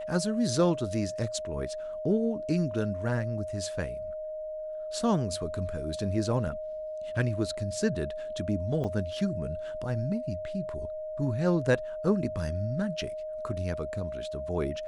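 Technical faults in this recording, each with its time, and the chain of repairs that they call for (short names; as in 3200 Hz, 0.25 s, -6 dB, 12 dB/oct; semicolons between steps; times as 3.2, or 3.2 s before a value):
tone 620 Hz -34 dBFS
8.84 gap 4.9 ms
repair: notch 620 Hz, Q 30; interpolate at 8.84, 4.9 ms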